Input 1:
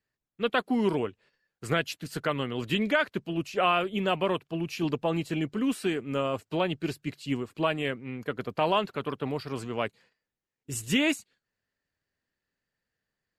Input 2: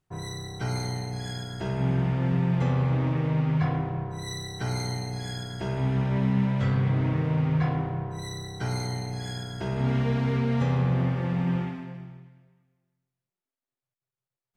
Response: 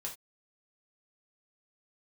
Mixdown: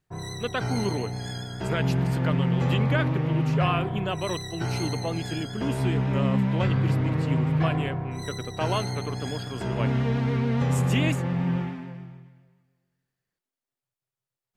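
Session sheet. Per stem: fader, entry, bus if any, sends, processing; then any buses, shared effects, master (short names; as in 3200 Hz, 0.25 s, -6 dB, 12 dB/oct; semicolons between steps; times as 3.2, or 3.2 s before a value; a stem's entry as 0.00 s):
-3.0 dB, 0.00 s, no send, dry
+0.5 dB, 0.00 s, no send, dry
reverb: off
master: vibrato 7.1 Hz 34 cents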